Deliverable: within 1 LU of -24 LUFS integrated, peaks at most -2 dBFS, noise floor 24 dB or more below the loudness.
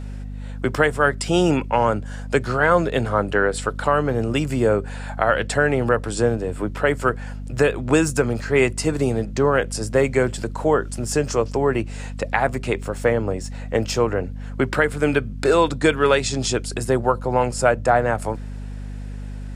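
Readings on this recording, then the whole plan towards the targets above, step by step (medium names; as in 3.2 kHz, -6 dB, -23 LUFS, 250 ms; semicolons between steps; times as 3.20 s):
hum 50 Hz; highest harmonic 250 Hz; hum level -29 dBFS; loudness -21.0 LUFS; peak level -3.5 dBFS; loudness target -24.0 LUFS
-> de-hum 50 Hz, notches 5; trim -3 dB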